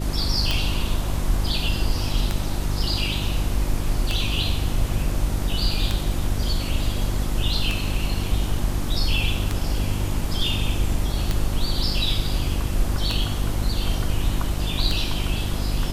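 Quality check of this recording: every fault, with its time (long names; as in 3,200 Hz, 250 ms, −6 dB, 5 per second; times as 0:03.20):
mains hum 50 Hz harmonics 7 −27 dBFS
scratch tick 33 1/3 rpm −8 dBFS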